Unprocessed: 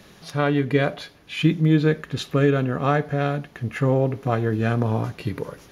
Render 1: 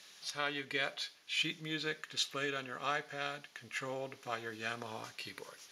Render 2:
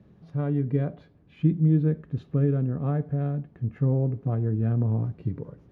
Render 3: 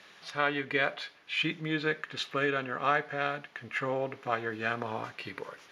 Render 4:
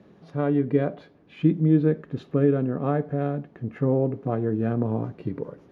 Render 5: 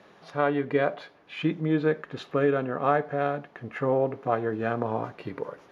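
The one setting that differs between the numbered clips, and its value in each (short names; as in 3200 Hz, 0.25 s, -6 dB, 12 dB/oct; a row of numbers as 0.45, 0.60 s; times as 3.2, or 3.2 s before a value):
band-pass, frequency: 5700, 110, 2100, 280, 790 Hz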